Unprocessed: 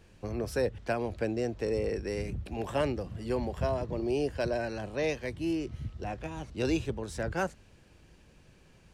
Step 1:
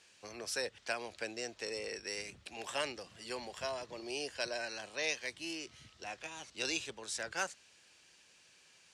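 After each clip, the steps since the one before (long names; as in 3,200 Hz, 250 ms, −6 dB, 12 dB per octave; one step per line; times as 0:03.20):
meter weighting curve ITU-R 468
level −5 dB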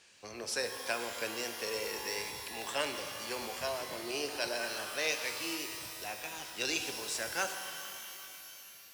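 reverb with rising layers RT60 2.6 s, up +12 semitones, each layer −2 dB, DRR 6 dB
level +2 dB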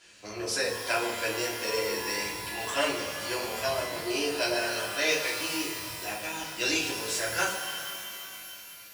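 rectangular room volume 150 cubic metres, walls furnished, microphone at 3 metres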